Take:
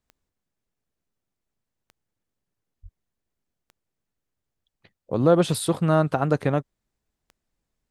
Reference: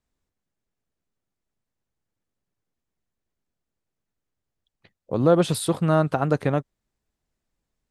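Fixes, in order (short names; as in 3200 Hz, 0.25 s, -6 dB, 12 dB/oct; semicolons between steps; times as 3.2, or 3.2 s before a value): de-click; de-plosive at 2.82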